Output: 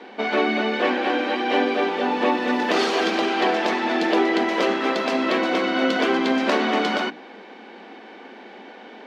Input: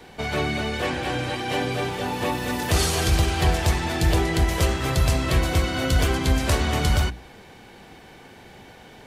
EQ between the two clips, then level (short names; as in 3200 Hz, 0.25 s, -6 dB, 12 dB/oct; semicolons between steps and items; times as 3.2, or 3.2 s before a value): brick-wall FIR high-pass 200 Hz; air absorption 230 m; +6.5 dB